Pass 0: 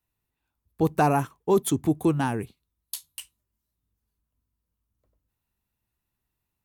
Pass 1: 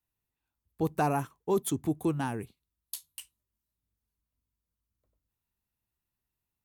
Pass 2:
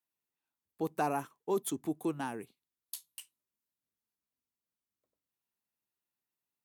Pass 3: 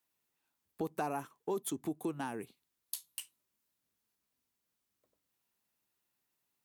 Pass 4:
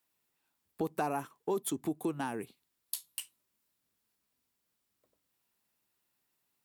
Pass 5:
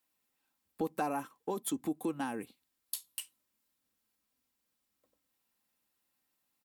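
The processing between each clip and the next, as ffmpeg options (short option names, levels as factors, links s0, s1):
-af "highshelf=f=8200:g=3,volume=0.473"
-af "highpass=230,volume=0.668"
-af "acompressor=threshold=0.00501:ratio=2.5,volume=2.37"
-af "bandreject=f=6300:w=18,volume=1.41"
-af "aecho=1:1:3.8:0.42,volume=0.841"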